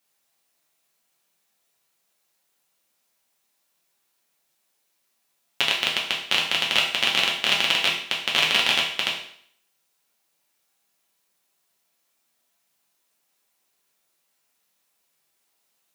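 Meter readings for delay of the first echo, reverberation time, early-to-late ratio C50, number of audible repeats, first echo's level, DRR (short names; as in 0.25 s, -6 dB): none, 0.60 s, 5.5 dB, none, none, -3.5 dB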